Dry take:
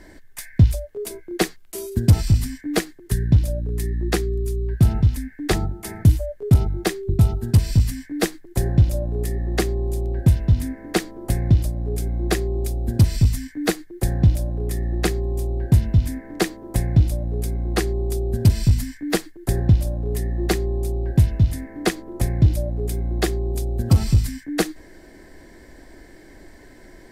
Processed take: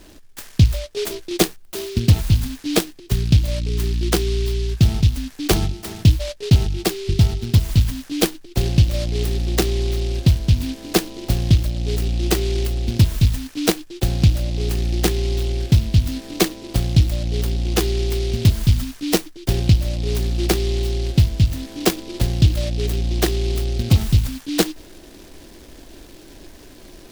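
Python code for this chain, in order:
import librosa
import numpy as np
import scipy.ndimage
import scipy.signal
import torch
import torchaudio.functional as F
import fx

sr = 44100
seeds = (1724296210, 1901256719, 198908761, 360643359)

p1 = fx.rider(x, sr, range_db=10, speed_s=0.5)
p2 = x + F.gain(torch.from_numpy(p1), -2.0).numpy()
p3 = fx.noise_mod_delay(p2, sr, seeds[0], noise_hz=3600.0, depth_ms=0.14)
y = F.gain(torch.from_numpy(p3), -3.5).numpy()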